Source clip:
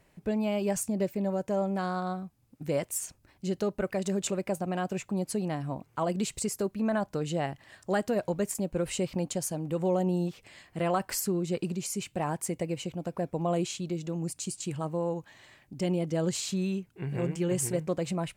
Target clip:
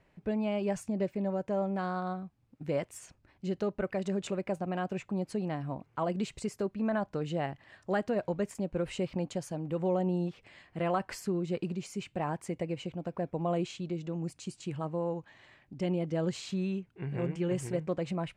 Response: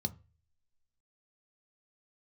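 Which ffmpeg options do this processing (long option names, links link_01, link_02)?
-af "lowpass=2600,aemphasis=mode=production:type=50fm,volume=-2dB"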